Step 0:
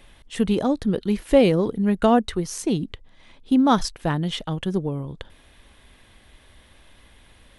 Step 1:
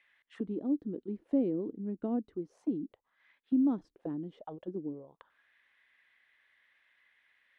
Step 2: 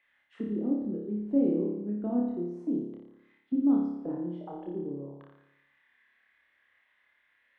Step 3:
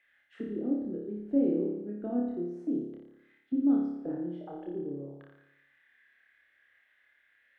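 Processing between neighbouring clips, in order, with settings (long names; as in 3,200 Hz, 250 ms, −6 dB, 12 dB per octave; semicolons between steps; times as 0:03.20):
envelope filter 300–2,100 Hz, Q 4.3, down, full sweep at −21 dBFS; level −5.5 dB
high-shelf EQ 2,300 Hz −10 dB; on a send: flutter between parallel walls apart 4.9 metres, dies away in 0.89 s
thirty-one-band graphic EQ 200 Hz −8 dB, 1,000 Hz −12 dB, 1,600 Hz +6 dB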